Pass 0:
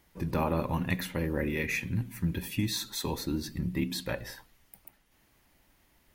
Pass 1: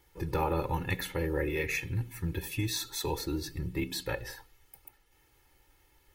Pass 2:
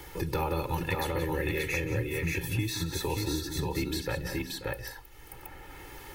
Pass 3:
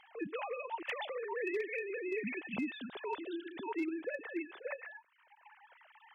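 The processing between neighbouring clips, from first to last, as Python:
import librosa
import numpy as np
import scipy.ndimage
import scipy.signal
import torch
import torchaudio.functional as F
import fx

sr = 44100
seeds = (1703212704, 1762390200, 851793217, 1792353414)

y1 = x + 0.92 * np.pad(x, (int(2.3 * sr / 1000.0), 0))[:len(x)]
y1 = F.gain(torch.from_numpy(y1), -2.5).numpy()
y2 = fx.echo_multitap(y1, sr, ms=(175, 534, 581), db=(-12.5, -19.0, -3.5))
y2 = fx.band_squash(y2, sr, depth_pct=70)
y3 = fx.sine_speech(y2, sr)
y3 = np.clip(10.0 ** (21.0 / 20.0) * y3, -1.0, 1.0) / 10.0 ** (21.0 / 20.0)
y3 = F.gain(torch.from_numpy(y3), -8.0).numpy()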